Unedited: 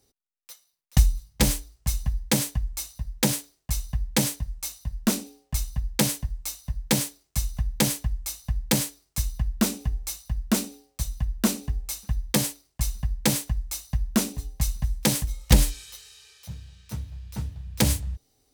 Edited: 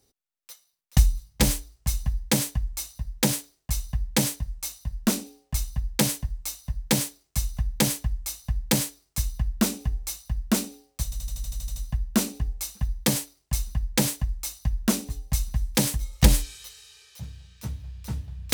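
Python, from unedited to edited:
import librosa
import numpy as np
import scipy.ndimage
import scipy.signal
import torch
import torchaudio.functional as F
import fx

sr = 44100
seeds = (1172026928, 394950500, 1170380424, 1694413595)

y = fx.edit(x, sr, fx.stutter(start_s=11.04, slice_s=0.08, count=10), tone=tone)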